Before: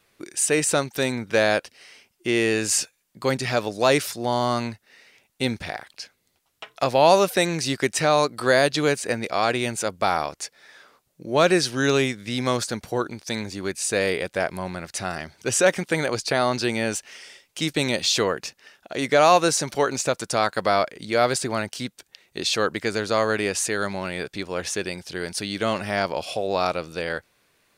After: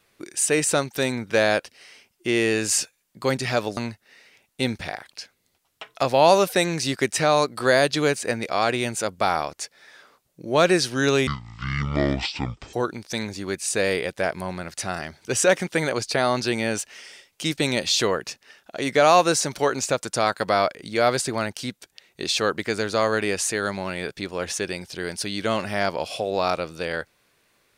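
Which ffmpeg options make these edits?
ffmpeg -i in.wav -filter_complex "[0:a]asplit=4[link_01][link_02][link_03][link_04];[link_01]atrim=end=3.772[link_05];[link_02]atrim=start=4.578:end=12.084[link_06];[link_03]atrim=start=12.08:end=12.9,asetpts=PTS-STARTPTS,asetrate=24696,aresample=44100[link_07];[link_04]atrim=start=12.896[link_08];[link_05][link_06]acrossfade=duration=0.004:curve1=hsin:curve2=hsin[link_09];[link_09][link_07]acrossfade=duration=0.004:curve1=hsin:curve2=hsin[link_10];[link_10][link_08]acrossfade=duration=0.004:curve1=hsin:curve2=hsin" out.wav

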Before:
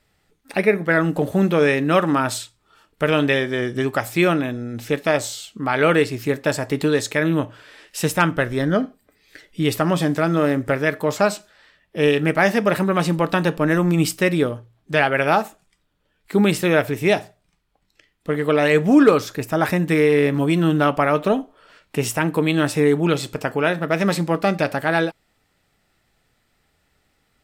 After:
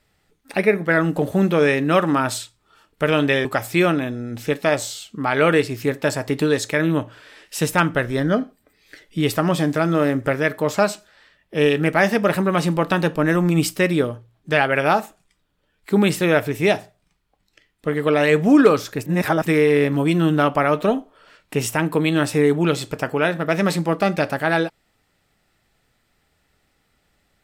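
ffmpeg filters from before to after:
ffmpeg -i in.wav -filter_complex "[0:a]asplit=4[link_01][link_02][link_03][link_04];[link_01]atrim=end=3.452[link_05];[link_02]atrim=start=3.868:end=19.482[link_06];[link_03]atrim=start=19.478:end=19.882,asetpts=PTS-STARTPTS,areverse[link_07];[link_04]atrim=start=19.878[link_08];[link_05][link_06]acrossfade=duration=0.004:curve1=hsin:curve2=hsin[link_09];[link_09][link_07]acrossfade=duration=0.004:curve1=hsin:curve2=hsin[link_10];[link_10][link_08]acrossfade=duration=0.004:curve1=hsin:curve2=hsin" out.wav

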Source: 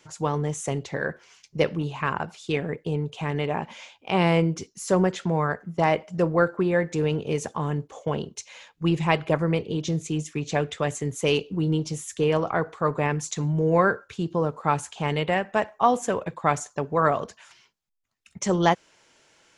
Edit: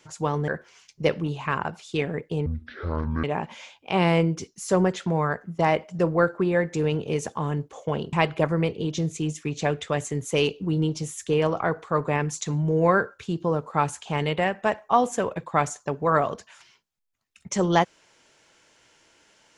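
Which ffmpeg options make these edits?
ffmpeg -i in.wav -filter_complex "[0:a]asplit=5[link_01][link_02][link_03][link_04][link_05];[link_01]atrim=end=0.482[link_06];[link_02]atrim=start=1.028:end=3.014[link_07];[link_03]atrim=start=3.01:end=3.43,asetpts=PTS-STARTPTS,asetrate=23814,aresample=44100[link_08];[link_04]atrim=start=3.426:end=8.322[link_09];[link_05]atrim=start=9.028[link_10];[link_06][link_07]acrossfade=duration=0.004:curve1=hsin:curve2=hsin[link_11];[link_11][link_08]acrossfade=duration=0.004:curve1=hsin:curve2=hsin[link_12];[link_12][link_09]acrossfade=duration=0.004:curve1=hsin:curve2=hsin[link_13];[link_13][link_10]acrossfade=duration=0.004:curve1=hsin:curve2=hsin" out.wav

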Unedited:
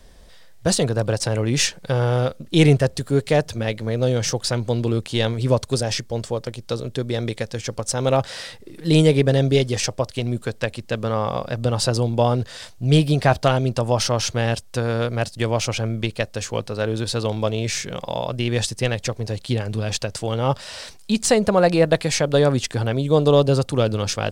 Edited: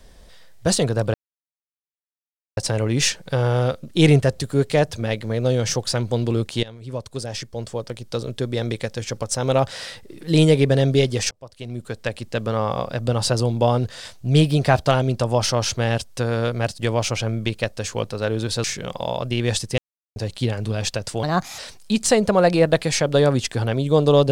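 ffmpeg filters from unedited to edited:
ffmpeg -i in.wav -filter_complex "[0:a]asplit=9[link_01][link_02][link_03][link_04][link_05][link_06][link_07][link_08][link_09];[link_01]atrim=end=1.14,asetpts=PTS-STARTPTS,afade=type=out:start_time=1.136:duration=0.004:curve=hsin,apad=pad_dur=1.43[link_10];[link_02]atrim=start=1.14:end=5.2,asetpts=PTS-STARTPTS,afade=type=in:duration=0.004:curve=hsin,afade=type=out:start_time=4.056:duration=0.004:curve=hsin:silence=0.0944061[link_11];[link_03]atrim=start=5.2:end=9.88,asetpts=PTS-STARTPTS,afade=type=in:duration=1.64:silence=0.0944061,afade=type=out:start_time=4.676:duration=0.004:curve=hsin[link_12];[link_04]atrim=start=9.88:end=17.212,asetpts=PTS-STARTPTS,afade=type=in:duration=0.96[link_13];[link_05]atrim=start=17.718:end=18.86,asetpts=PTS-STARTPTS,afade=type=out:start_time=1.138:duration=0.004:curve=hsin[link_14];[link_06]atrim=start=18.86:end=19.24,asetpts=PTS-STARTPTS,volume=0[link_15];[link_07]atrim=start=19.24:end=20.314,asetpts=PTS-STARTPTS,afade=type=in:duration=0.004:curve=hsin[link_16];[link_08]atrim=start=20.31:end=20.78,asetpts=PTS-STARTPTS,asetrate=58212,aresample=44100,atrim=end_sample=15702,asetpts=PTS-STARTPTS[link_17];[link_09]atrim=start=20.776[link_18];[link_10][link_11][link_12][link_13]concat=n=4:v=0:a=1[link_19];[link_14][link_15][link_16]concat=n=3:v=0:a=1[link_20];[link_19][link_20]acrossfade=duration=0.004:curve1=hsin:curve2=hsin[link_21];[link_21][link_17]acrossfade=duration=0.004:curve1=hsin:curve2=hsin[link_22];[link_22][link_18]acrossfade=duration=0.004:curve1=hsin:curve2=hsin" out.wav

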